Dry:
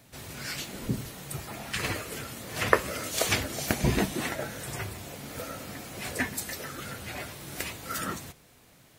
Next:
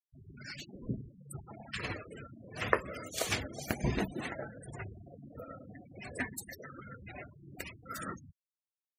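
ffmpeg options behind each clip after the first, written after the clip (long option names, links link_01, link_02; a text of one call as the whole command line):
ffmpeg -i in.wav -af "afftfilt=real='re*gte(hypot(re,im),0.0251)':imag='im*gte(hypot(re,im),0.0251)':win_size=1024:overlap=0.75,volume=-6.5dB" out.wav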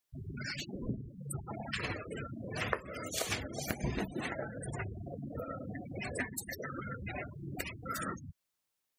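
ffmpeg -i in.wav -af "acompressor=threshold=-51dB:ratio=2.5,volume=11.5dB" out.wav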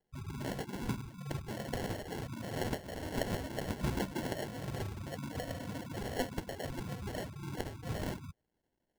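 ffmpeg -i in.wav -af "acrusher=samples=36:mix=1:aa=0.000001,volume=1dB" out.wav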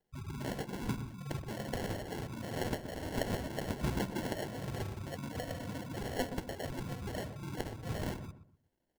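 ffmpeg -i in.wav -filter_complex "[0:a]asplit=2[link_01][link_02];[link_02]adelay=123,lowpass=frequency=1200:poles=1,volume=-10.5dB,asplit=2[link_03][link_04];[link_04]adelay=123,lowpass=frequency=1200:poles=1,volume=0.3,asplit=2[link_05][link_06];[link_06]adelay=123,lowpass=frequency=1200:poles=1,volume=0.3[link_07];[link_01][link_03][link_05][link_07]amix=inputs=4:normalize=0" out.wav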